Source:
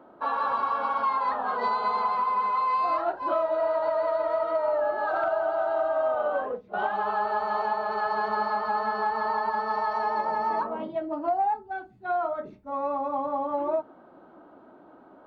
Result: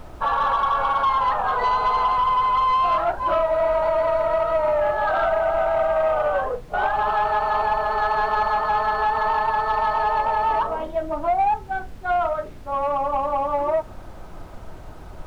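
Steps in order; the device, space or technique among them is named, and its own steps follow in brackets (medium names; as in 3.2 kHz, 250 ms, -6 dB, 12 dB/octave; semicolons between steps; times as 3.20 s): aircraft cabin announcement (band-pass 480–3800 Hz; saturation -21.5 dBFS, distortion -19 dB; brown noise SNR 15 dB); trim +8 dB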